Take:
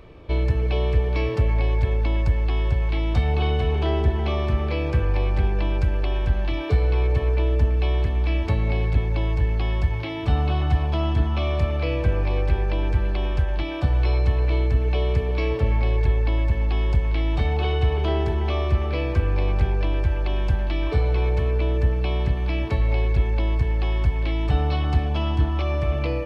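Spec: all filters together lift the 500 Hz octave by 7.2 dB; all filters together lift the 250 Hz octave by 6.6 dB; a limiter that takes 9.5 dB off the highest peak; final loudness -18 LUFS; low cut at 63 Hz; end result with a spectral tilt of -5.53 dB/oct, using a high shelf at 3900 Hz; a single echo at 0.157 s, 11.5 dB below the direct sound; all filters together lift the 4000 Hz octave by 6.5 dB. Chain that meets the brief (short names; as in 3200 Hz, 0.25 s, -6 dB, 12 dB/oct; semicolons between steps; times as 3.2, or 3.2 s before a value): HPF 63 Hz; bell 250 Hz +7 dB; bell 500 Hz +6.5 dB; high shelf 3900 Hz +6 dB; bell 4000 Hz +5.5 dB; limiter -17 dBFS; echo 0.157 s -11.5 dB; gain +8 dB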